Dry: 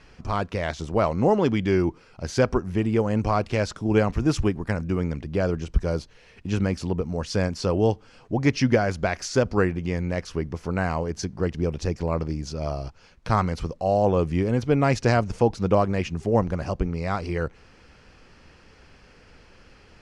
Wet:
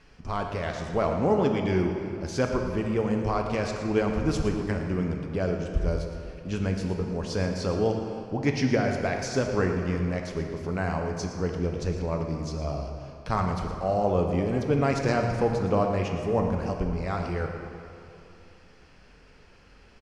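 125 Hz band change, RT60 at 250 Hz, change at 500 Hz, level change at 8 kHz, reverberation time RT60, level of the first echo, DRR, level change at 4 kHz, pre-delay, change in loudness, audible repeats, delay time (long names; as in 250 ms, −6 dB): −3.5 dB, 2.7 s, −2.5 dB, −3.5 dB, 2.7 s, −11.5 dB, 2.5 dB, −3.5 dB, 3 ms, −3.0 dB, 1, 115 ms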